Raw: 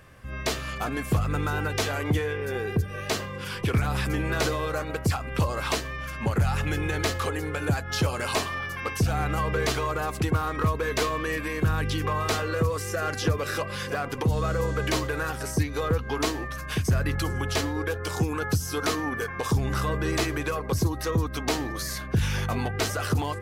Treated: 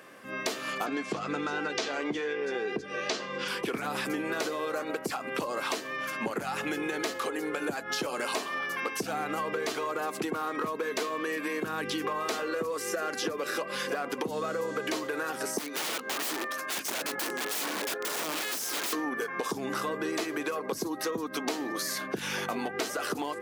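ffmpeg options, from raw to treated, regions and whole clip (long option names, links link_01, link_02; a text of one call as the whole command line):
ffmpeg -i in.wav -filter_complex "[0:a]asettb=1/sr,asplit=3[link_01][link_02][link_03];[link_01]atrim=end=0.864[link_04];[link_02]atrim=start=0.86:end=3.48,asetpts=PTS-STARTPTS,afade=type=in:duration=0.004:curve=qsin,afade=type=out:start_time=2.616:duration=0.004:curve=qsin,lowpass=frequency=5800:width=0.5412,lowpass=frequency=5800:width=1.3066,aemphasis=mode=production:type=cd,asplit=2[link_05][link_06];[link_06]adelay=14,volume=-11.5dB[link_07];[link_05][link_07]amix=inputs=2:normalize=0,atrim=end_sample=115542[link_08];[link_03]atrim=start=3.476[link_09];[link_04][link_08]acrossfade=duration=0.004:curve1=hsin:curve2=qsin[link_10];[link_10][link_09]acrossfade=duration=0.004:curve1=qsin:curve2=hsin,asettb=1/sr,asplit=3[link_11][link_12][link_13];[link_11]atrim=end=15.584[link_14];[link_12]atrim=start=15.58:end=18.93,asetpts=PTS-STARTPTS,afade=type=in:duration=0.004:curve=qsin,afade=type=out:start_time=3.346:duration=0.004:curve=qsin,highpass=290,aeval=exprs='(mod(25.1*val(0)+1,2)-1)/25.1':channel_layout=same[link_15];[link_13]atrim=start=18.926[link_16];[link_14][link_15]acrossfade=duration=0.004:curve1=hsin:curve2=qsin[link_17];[link_17][link_16]acrossfade=duration=0.004:curve1=qsin:curve2=hsin,highpass=frequency=240:width=0.5412,highpass=frequency=240:width=1.3066,lowshelf=frequency=460:gain=3.5,acompressor=threshold=-32dB:ratio=6,volume=3dB" out.wav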